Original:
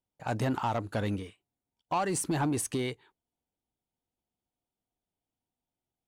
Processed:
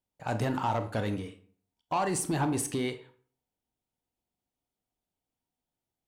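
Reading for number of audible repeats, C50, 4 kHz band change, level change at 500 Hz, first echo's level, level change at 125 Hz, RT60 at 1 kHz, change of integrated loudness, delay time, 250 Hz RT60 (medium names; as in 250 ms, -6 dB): no echo, 12.0 dB, +0.5 dB, +1.0 dB, no echo, +0.5 dB, 0.50 s, +0.5 dB, no echo, 0.55 s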